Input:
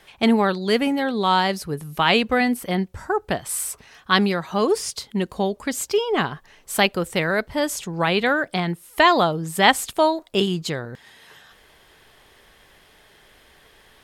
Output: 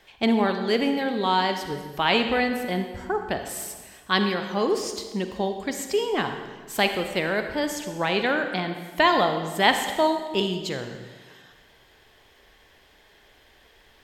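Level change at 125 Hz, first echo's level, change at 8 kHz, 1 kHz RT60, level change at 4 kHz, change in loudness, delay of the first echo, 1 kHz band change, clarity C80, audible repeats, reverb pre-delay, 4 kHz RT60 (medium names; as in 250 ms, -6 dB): -5.5 dB, no echo, -6.5 dB, 1.4 s, -2.5 dB, -3.0 dB, no echo, -3.0 dB, 8.5 dB, no echo, 38 ms, 1.2 s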